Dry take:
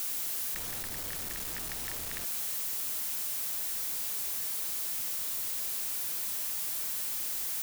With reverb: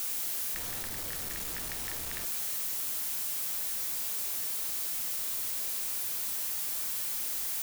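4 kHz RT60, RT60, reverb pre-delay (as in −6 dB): 0.35 s, 0.40 s, 11 ms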